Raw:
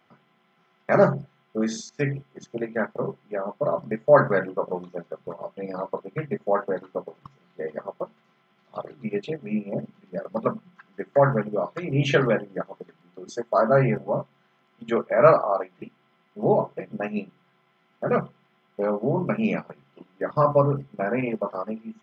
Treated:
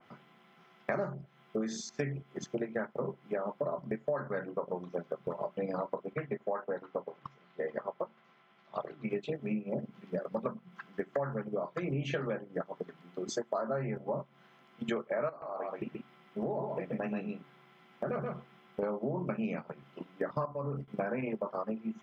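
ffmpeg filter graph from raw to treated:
-filter_complex "[0:a]asettb=1/sr,asplit=3[s0][s1][s2];[s0]atrim=end=6.134[s3];[s1]atrim=start=6.13:end=9.1,asetpts=PTS-STARTPTS,afade=t=in:d=0.004:c=qsin,afade=t=out:st=2.966:d=0.004:c=qsin,lowpass=f=2800:p=1,lowshelf=f=450:g=-8.5[s4];[s2]atrim=start=9.096[s5];[s3][s4]acrossfade=d=0.004:c1=hsin:c2=qsin[s6];[s6][s5]acrossfade=d=0.004:c1=qsin:c2=hsin,asettb=1/sr,asplit=3[s7][s8][s9];[s7]atrim=end=15.294[s10];[s8]atrim=start=15.29:end=18.83,asetpts=PTS-STARTPTS,afade=t=in:d=0.004:c=qsin,afade=t=out:st=3.536:d=0.004:c=qsin,acompressor=threshold=0.0224:ratio=2.5:attack=3.2:release=140:knee=1:detection=peak,aecho=1:1:130:0.531,atrim=end_sample=156114[s11];[s9]atrim=start=18.826[s12];[s10][s11]acrossfade=d=0.004:c1=hsin:c2=qsin[s13];[s13][s12]acrossfade=d=0.004:c1=qsin:c2=hsin,asettb=1/sr,asplit=3[s14][s15][s16];[s14]atrim=end=20.454[s17];[s15]atrim=start=20.45:end=20.88,asetpts=PTS-STARTPTS,afade=t=in:d=0.004:c=qsin,afade=t=out:st=0.426:d=0.004:c=qsin,acompressor=threshold=0.0251:ratio=2:attack=3.2:release=140:knee=1:detection=peak,agate=range=0.0224:threshold=0.0158:ratio=3:release=100:detection=peak[s18];[s16]atrim=start=20.876[s19];[s17][s18]acrossfade=d=0.004:c1=hsin:c2=qsin[s20];[s20][s19]acrossfade=d=0.004:c1=qsin:c2=hsin,acompressor=threshold=0.02:ratio=10,adynamicequalizer=threshold=0.00158:dfrequency=2200:dqfactor=0.7:tfrequency=2200:tqfactor=0.7:attack=5:release=100:ratio=0.375:range=2:mode=cutabove:tftype=highshelf,volume=1.41"

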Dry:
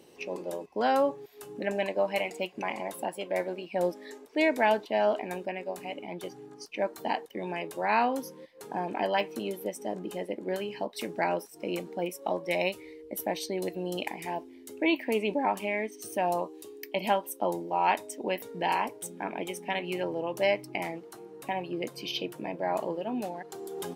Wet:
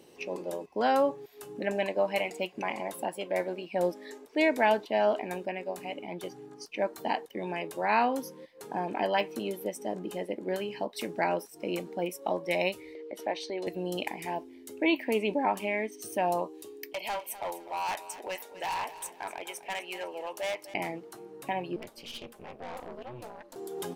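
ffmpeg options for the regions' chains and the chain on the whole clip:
-filter_complex "[0:a]asettb=1/sr,asplit=3[s0][s1][s2];[s0]atrim=end=12.954[s3];[s1]atrim=start=12.95:end=13.67,asetpts=PTS-STARTPTS,afade=t=in:d=0.004:c=qsin,afade=t=out:st=0.716:d=0.004:c=qsin,highpass=360,lowpass=4400,acompressor=mode=upward:threshold=0.0178:ratio=2.5:attack=3.2:release=140:knee=2.83:detection=peak[s4];[s2]atrim=start=13.666[s5];[s3][s4]acrossfade=d=0.004:c1=hsin:c2=qsin[s6];[s6][s5]acrossfade=d=0.004:c1=qsin:c2=hsin,asettb=1/sr,asplit=3[s7][s8][s9];[s7]atrim=end=16.934[s10];[s8]atrim=start=16.93:end=20.74,asetpts=PTS-STARTPTS,afade=t=in:d=0.004:c=qsin,afade=t=out:st=3.806:d=0.004:c=qsin,highpass=660,asoftclip=type=hard:threshold=0.0335,aecho=1:1:251|502|753:0.188|0.0659|0.0231,atrim=end_sample=168021[s11];[s9]atrim=start=20.736[s12];[s10][s11]acrossfade=d=0.004:c1=hsin:c2=qsin[s13];[s13][s12]acrossfade=d=0.004:c1=qsin:c2=hsin,asettb=1/sr,asplit=3[s14][s15][s16];[s14]atrim=end=21.764[s17];[s15]atrim=start=21.76:end=23.56,asetpts=PTS-STARTPTS,afade=t=in:d=0.004:c=qsin,afade=t=out:st=1.796:d=0.004:c=qsin,equalizer=f=140:w=0.86:g=-13.5,aeval=exprs='val(0)*sin(2*PI*120*n/s)':c=same,aeval=exprs='(tanh(63.1*val(0)+0.55)-tanh(0.55))/63.1':c=same[s18];[s16]atrim=start=23.556[s19];[s17][s18]acrossfade=d=0.004:c1=hsin:c2=qsin[s20];[s20][s19]acrossfade=d=0.004:c1=qsin:c2=hsin"

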